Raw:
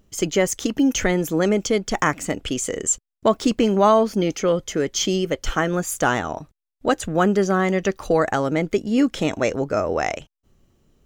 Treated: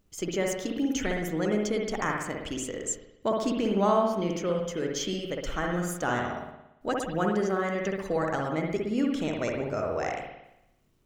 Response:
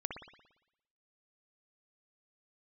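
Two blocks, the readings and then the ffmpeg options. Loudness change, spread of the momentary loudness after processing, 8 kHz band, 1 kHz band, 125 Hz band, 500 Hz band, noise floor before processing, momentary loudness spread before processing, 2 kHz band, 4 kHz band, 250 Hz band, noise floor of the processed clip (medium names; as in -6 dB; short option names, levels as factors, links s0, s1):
-8.0 dB, 7 LU, -10.5 dB, -7.5 dB, -7.5 dB, -8.0 dB, -84 dBFS, 6 LU, -8.0 dB, -9.0 dB, -8.0 dB, -63 dBFS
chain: -filter_complex "[0:a]acrusher=bits=10:mix=0:aa=0.000001[s0];[1:a]atrim=start_sample=2205[s1];[s0][s1]afir=irnorm=-1:irlink=0,volume=0.376"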